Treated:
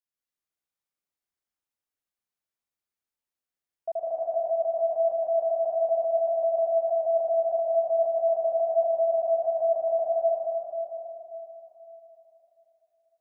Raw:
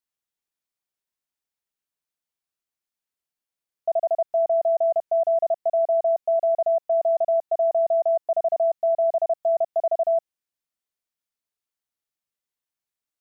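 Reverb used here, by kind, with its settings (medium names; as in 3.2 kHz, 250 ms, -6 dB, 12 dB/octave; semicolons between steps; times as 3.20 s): plate-style reverb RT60 3.6 s, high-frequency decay 0.4×, pre-delay 115 ms, DRR -5 dB; trim -8 dB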